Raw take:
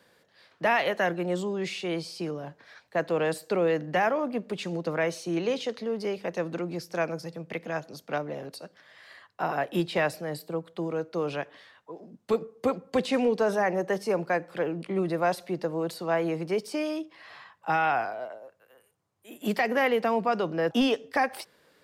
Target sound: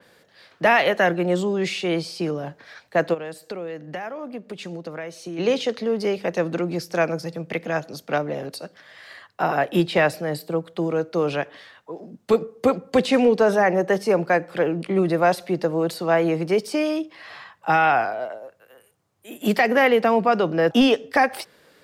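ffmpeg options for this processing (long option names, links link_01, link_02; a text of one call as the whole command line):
ffmpeg -i in.wav -filter_complex "[0:a]equalizer=frequency=1000:width=5.8:gain=-3,asplit=3[link_01][link_02][link_03];[link_01]afade=type=out:start_time=3.13:duration=0.02[link_04];[link_02]acompressor=threshold=-40dB:ratio=4,afade=type=in:start_time=3.13:duration=0.02,afade=type=out:start_time=5.38:duration=0.02[link_05];[link_03]afade=type=in:start_time=5.38:duration=0.02[link_06];[link_04][link_05][link_06]amix=inputs=3:normalize=0,adynamicequalizer=threshold=0.00631:dfrequency=4200:dqfactor=0.7:tfrequency=4200:tqfactor=0.7:attack=5:release=100:ratio=0.375:range=2:mode=cutabove:tftype=highshelf,volume=7.5dB" out.wav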